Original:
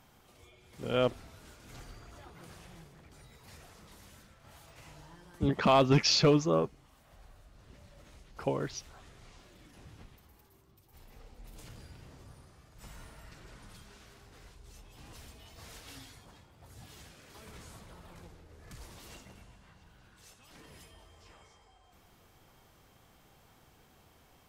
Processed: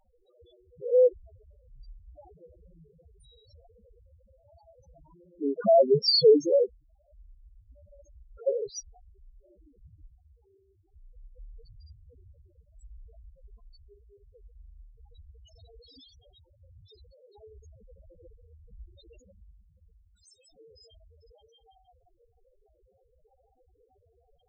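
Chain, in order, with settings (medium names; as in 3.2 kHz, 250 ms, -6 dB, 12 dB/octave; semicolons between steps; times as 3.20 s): graphic EQ 125/250/500/2000/4000/8000 Hz -6/-3/+7/-10/+9/+7 dB; loudest bins only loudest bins 2; trim +6.5 dB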